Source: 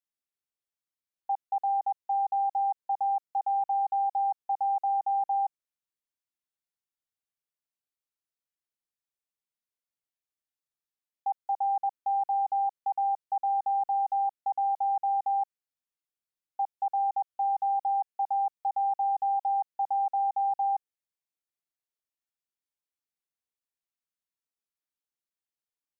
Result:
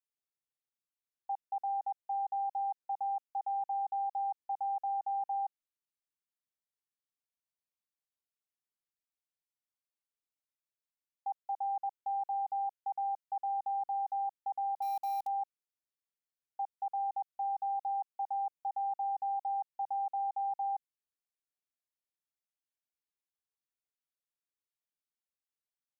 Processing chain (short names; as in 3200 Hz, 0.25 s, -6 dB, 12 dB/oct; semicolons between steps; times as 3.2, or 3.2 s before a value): 14.82–15.27 short-mantissa float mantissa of 2-bit; gain -7 dB